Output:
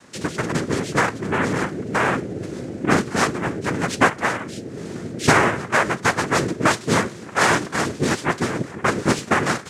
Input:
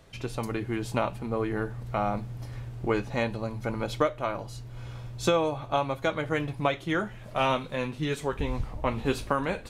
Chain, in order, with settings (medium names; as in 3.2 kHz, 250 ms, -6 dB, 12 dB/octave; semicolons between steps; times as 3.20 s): noise-vocoded speech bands 3; trim +8.5 dB